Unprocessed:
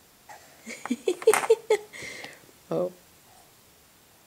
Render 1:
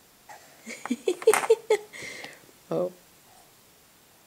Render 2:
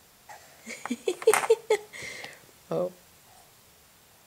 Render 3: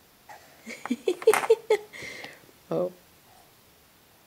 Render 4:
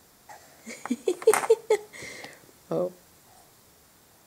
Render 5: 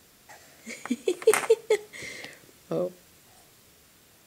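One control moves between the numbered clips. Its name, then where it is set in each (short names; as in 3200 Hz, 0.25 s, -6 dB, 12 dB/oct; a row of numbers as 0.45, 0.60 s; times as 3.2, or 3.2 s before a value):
bell, frequency: 82, 300, 7900, 2800, 860 Hz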